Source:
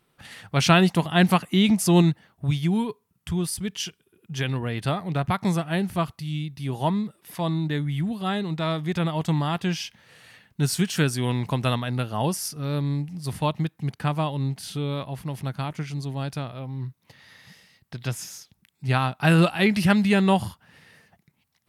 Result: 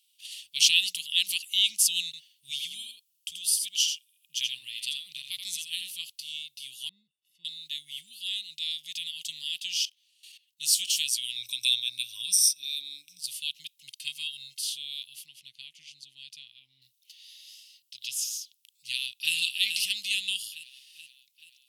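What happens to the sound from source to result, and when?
0:00.71–0:01.35: mains-hum notches 60/120/180/240/300/360/420/480/540 Hz
0:02.05–0:05.92: single-tap delay 82 ms −6.5 dB
0:06.89–0:07.45: moving average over 55 samples
0:09.85–0:10.61: output level in coarse steps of 17 dB
0:11.36–0:13.20: EQ curve with evenly spaced ripples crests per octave 1.6, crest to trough 17 dB
0:13.87–0:14.61: comb filter 1.9 ms
0:15.26–0:16.82: low-pass filter 1,800 Hz 6 dB per octave
0:18.87–0:19.34: delay throw 430 ms, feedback 55%, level −6.5 dB
whole clip: elliptic high-pass filter 2,900 Hz, stop band 50 dB; level +6.5 dB

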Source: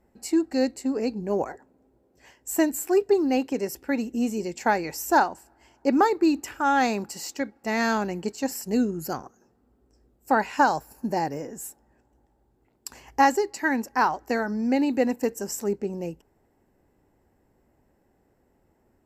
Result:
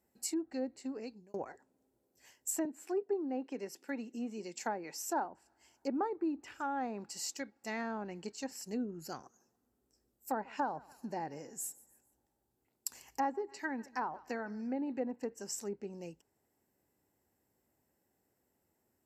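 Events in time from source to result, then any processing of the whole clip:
0:00.88–0:01.34: fade out
0:02.65–0:05.25: high-pass filter 170 Hz 24 dB per octave
0:09.19–0:15.09: repeating echo 144 ms, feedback 41%, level −23 dB
whole clip: treble cut that deepens with the level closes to 950 Hz, closed at −19 dBFS; high-pass filter 78 Hz; first-order pre-emphasis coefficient 0.8

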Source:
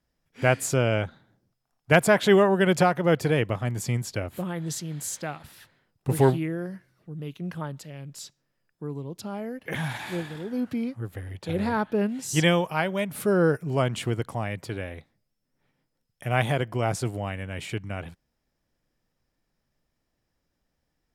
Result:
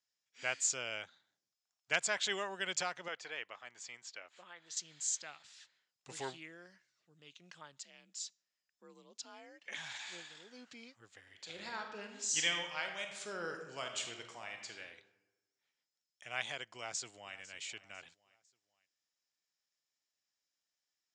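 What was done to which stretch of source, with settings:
0:03.08–0:04.77: resonant band-pass 1,200 Hz, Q 0.58
0:07.81–0:09.77: frequency shifter +47 Hz
0:11.21–0:14.80: thrown reverb, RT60 1.1 s, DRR 4 dB
0:16.75–0:17.36: delay throw 500 ms, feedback 40%, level −17.5 dB
whole clip: elliptic low-pass filter 7,200 Hz, stop band 50 dB; first difference; level +1.5 dB

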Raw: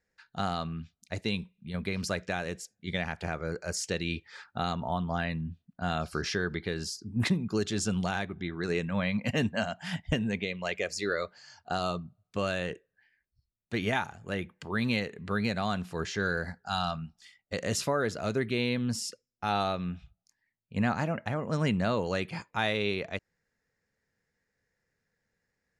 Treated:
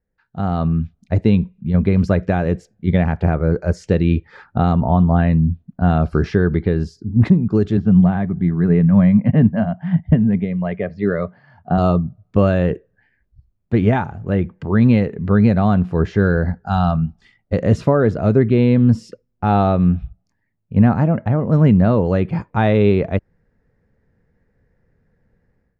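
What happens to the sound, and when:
0:07.77–0:11.78: loudspeaker in its box 110–3,000 Hz, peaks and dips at 170 Hz +5 dB, 340 Hz −7 dB, 500 Hz −7 dB, 860 Hz −4 dB, 1,400 Hz −6 dB, 2,600 Hz −9 dB
whole clip: low-pass filter 1,000 Hz 6 dB per octave; spectral tilt −2.5 dB per octave; automatic gain control gain up to 16 dB; level −1 dB

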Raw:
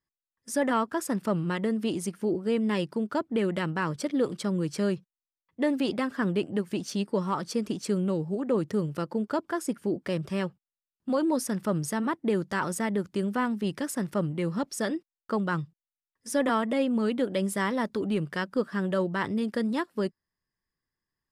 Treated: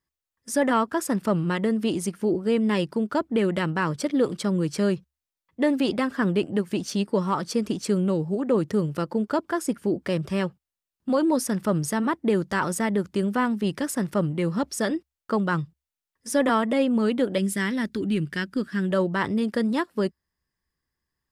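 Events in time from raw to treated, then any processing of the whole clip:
0:17.38–0:18.91: flat-topped bell 750 Hz −11 dB
whole clip: parametric band 68 Hz +12.5 dB 0.25 octaves; level +4 dB

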